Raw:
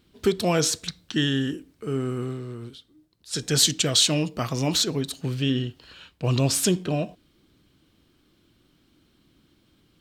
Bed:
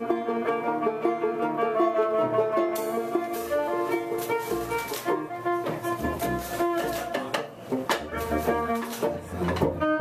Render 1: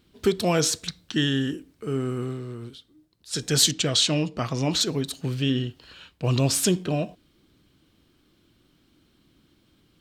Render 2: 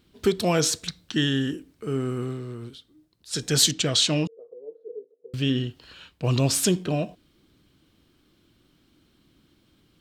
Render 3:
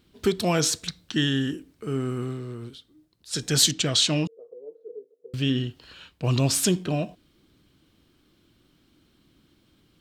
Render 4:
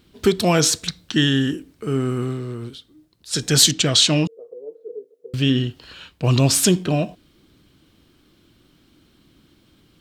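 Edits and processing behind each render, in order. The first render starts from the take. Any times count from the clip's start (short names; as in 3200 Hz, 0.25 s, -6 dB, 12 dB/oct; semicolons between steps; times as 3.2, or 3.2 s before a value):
3.71–4.81 air absorption 51 m
4.27–5.34 Butterworth band-pass 460 Hz, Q 7.1
dynamic EQ 480 Hz, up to -3 dB, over -39 dBFS, Q 2.5
gain +6 dB; limiter -2 dBFS, peak gain reduction 1 dB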